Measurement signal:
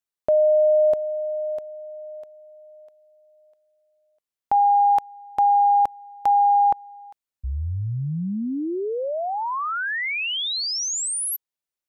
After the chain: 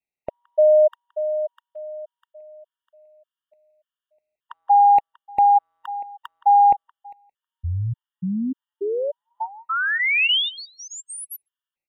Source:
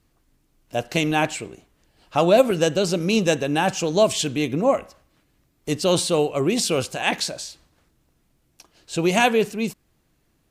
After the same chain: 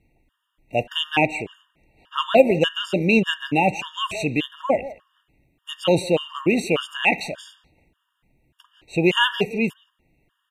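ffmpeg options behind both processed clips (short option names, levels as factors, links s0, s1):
-filter_complex "[0:a]highshelf=f=3800:t=q:w=3:g=-8.5,asplit=2[s0][s1];[s1]adelay=170,highpass=300,lowpass=3400,asoftclip=type=hard:threshold=0.224,volume=0.141[s2];[s0][s2]amix=inputs=2:normalize=0,afftfilt=real='re*gt(sin(2*PI*1.7*pts/sr)*(1-2*mod(floor(b*sr/1024/930),2)),0)':imag='im*gt(sin(2*PI*1.7*pts/sr)*(1-2*mod(floor(b*sr/1024/930),2)),0)':win_size=1024:overlap=0.75,volume=1.33"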